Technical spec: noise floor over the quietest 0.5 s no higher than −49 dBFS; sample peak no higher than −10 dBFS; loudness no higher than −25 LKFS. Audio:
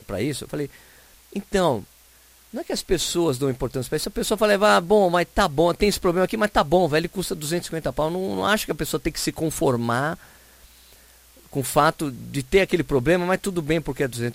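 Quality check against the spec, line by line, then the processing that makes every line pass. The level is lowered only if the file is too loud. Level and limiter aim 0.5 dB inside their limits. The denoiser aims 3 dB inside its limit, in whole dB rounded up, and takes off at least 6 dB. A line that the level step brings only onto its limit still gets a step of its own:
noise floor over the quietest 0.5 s −53 dBFS: in spec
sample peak −4.5 dBFS: out of spec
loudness −22.5 LKFS: out of spec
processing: level −3 dB
brickwall limiter −10.5 dBFS

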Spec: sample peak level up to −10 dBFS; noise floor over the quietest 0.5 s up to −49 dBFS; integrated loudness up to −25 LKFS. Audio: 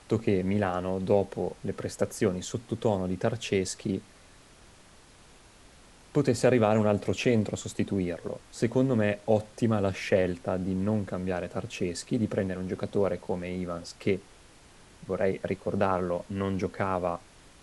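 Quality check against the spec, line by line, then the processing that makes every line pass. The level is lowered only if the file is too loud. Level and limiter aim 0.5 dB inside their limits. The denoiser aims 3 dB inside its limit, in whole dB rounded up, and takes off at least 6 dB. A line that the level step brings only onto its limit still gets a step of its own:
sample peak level −9.0 dBFS: out of spec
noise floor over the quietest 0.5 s −55 dBFS: in spec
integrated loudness −29.0 LKFS: in spec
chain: brickwall limiter −10.5 dBFS

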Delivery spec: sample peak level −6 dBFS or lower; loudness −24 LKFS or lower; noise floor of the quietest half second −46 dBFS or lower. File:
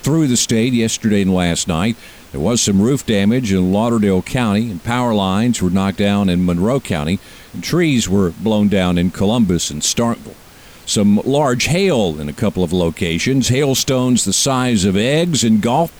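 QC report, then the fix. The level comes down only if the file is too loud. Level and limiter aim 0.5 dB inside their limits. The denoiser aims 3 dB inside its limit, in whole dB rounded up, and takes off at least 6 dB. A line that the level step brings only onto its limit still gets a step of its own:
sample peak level −5.0 dBFS: out of spec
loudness −15.5 LKFS: out of spec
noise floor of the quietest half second −41 dBFS: out of spec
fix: level −9 dB

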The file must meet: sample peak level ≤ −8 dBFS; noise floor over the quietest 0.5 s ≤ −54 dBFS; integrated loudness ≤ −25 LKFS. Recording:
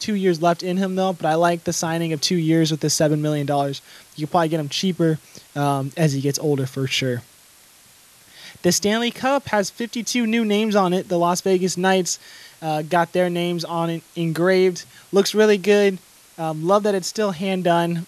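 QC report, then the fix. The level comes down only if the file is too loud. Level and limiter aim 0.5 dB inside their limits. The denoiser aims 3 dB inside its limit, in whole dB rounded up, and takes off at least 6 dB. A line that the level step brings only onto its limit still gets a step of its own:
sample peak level −4.0 dBFS: out of spec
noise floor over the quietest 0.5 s −50 dBFS: out of spec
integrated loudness −20.5 LKFS: out of spec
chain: level −5 dB

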